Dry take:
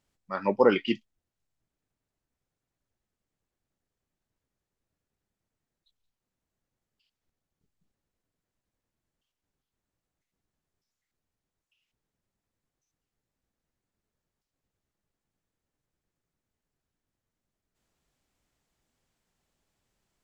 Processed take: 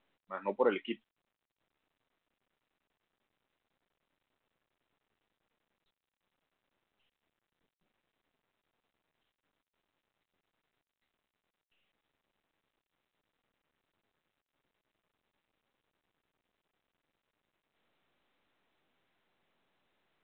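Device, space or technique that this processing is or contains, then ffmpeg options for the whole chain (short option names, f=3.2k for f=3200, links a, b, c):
telephone: -af "highpass=260,lowpass=3.2k,volume=-8dB" -ar 8000 -c:a pcm_mulaw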